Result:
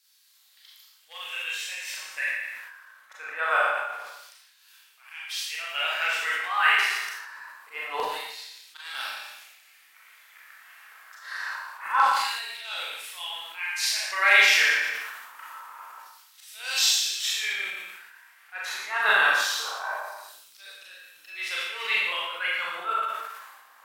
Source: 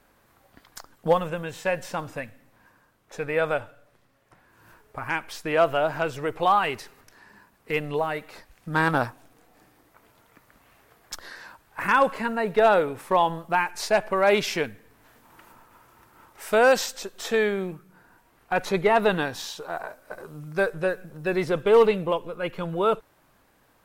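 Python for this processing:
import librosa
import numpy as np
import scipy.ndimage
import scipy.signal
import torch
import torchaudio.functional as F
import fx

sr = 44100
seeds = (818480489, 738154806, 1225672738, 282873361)

y = fx.auto_swell(x, sr, attack_ms=255.0)
y = y + 10.0 ** (-11.0 / 20.0) * np.pad(y, (int(116 * sr / 1000.0), 0))[:len(y)]
y = fx.filter_lfo_highpass(y, sr, shape='saw_down', hz=0.25, low_hz=970.0, high_hz=4500.0, q=2.1)
y = fx.rev_schroeder(y, sr, rt60_s=0.71, comb_ms=29, drr_db=-5.0)
y = fx.sustainer(y, sr, db_per_s=43.0)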